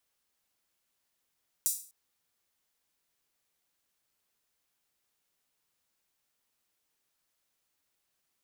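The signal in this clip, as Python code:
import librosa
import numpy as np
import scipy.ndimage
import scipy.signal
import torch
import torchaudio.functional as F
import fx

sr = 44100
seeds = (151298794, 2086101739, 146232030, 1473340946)

y = fx.drum_hat_open(sr, length_s=0.25, from_hz=7500.0, decay_s=0.41)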